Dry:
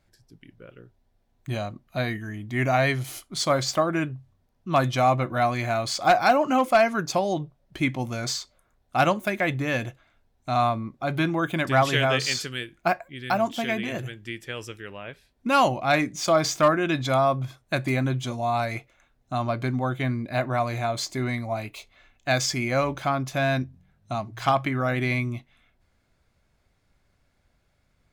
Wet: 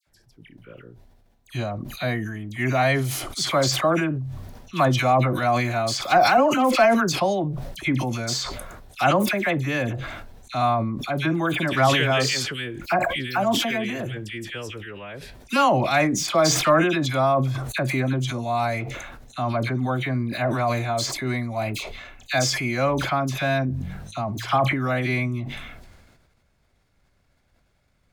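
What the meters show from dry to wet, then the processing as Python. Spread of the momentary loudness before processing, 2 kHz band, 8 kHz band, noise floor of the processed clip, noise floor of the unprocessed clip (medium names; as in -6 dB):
13 LU, +2.5 dB, +4.5 dB, -65 dBFS, -69 dBFS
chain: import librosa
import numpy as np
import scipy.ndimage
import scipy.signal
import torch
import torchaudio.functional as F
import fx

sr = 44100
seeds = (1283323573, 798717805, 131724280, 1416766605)

y = fx.dispersion(x, sr, late='lows', ms=70.0, hz=1700.0)
y = fx.sustainer(y, sr, db_per_s=38.0)
y = y * librosa.db_to_amplitude(1.0)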